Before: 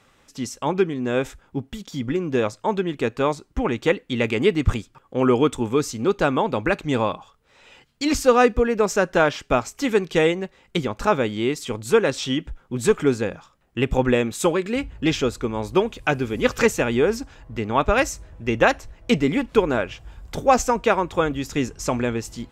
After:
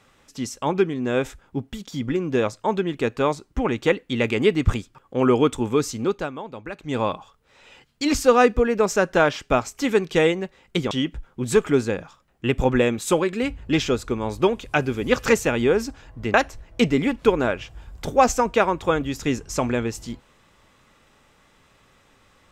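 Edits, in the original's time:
0:05.98–0:07.09: duck −13 dB, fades 0.33 s
0:10.91–0:12.24: remove
0:17.67–0:18.64: remove

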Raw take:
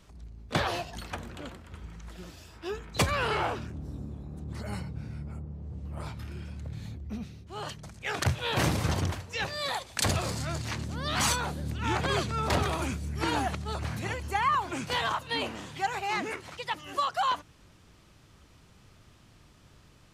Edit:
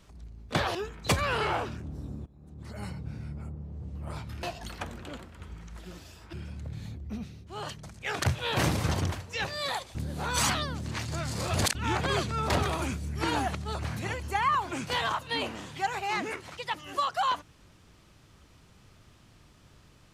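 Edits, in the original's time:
0:00.75–0:02.65: move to 0:06.33
0:04.16–0:04.96: fade in, from −19.5 dB
0:09.95–0:11.75: reverse

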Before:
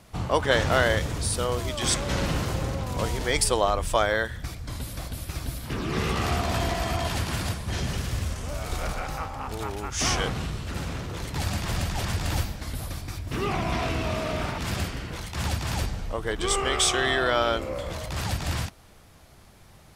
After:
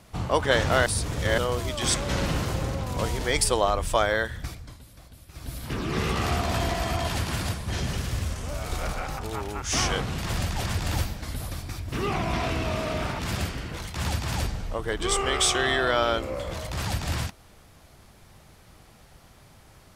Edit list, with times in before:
0:00.86–0:01.38: reverse
0:04.45–0:05.63: duck −14.5 dB, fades 0.32 s
0:09.19–0:09.47: remove
0:10.46–0:11.57: remove

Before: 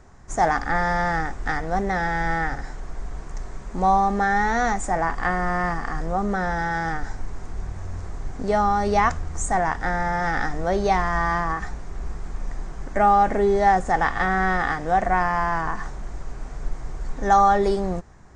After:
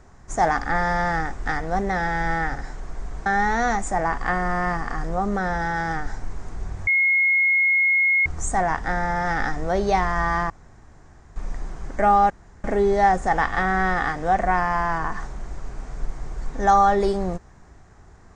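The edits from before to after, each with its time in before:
0:03.26–0:04.23: remove
0:07.84–0:09.23: beep over 2,160 Hz −15.5 dBFS
0:11.47–0:12.33: fill with room tone
0:13.27: splice in room tone 0.34 s

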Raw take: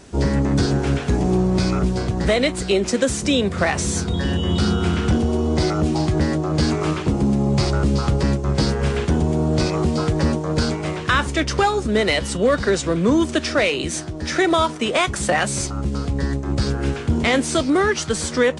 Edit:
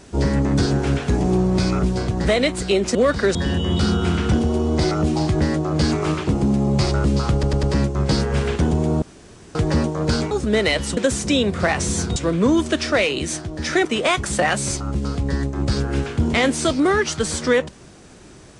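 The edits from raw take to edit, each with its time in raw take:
0:02.95–0:04.14: swap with 0:12.39–0:12.79
0:08.12: stutter 0.10 s, 4 plays
0:09.51–0:10.04: fill with room tone
0:10.80–0:11.73: remove
0:14.48–0:14.75: remove

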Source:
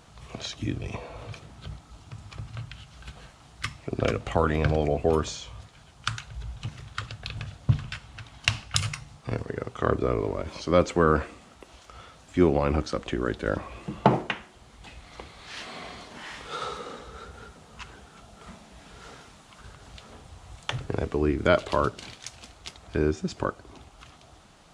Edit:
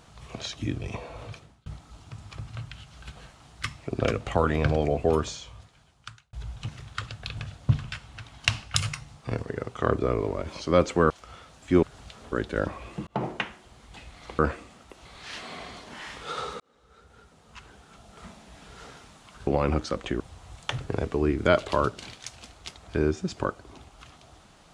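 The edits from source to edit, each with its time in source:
0:01.26–0:01.66: fade out
0:05.15–0:06.33: fade out
0:11.10–0:11.76: move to 0:15.29
0:12.49–0:13.22: swap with 0:19.71–0:20.20
0:13.97–0:14.31: fade in
0:16.84–0:18.52: fade in

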